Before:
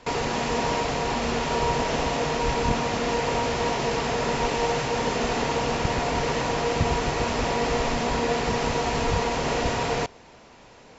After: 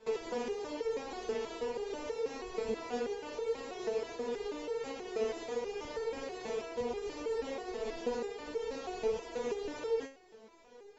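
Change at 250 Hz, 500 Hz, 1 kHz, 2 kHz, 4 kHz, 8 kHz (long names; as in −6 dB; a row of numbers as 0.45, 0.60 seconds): −15.0 dB, −8.5 dB, −19.0 dB, −18.5 dB, −18.0 dB, can't be measured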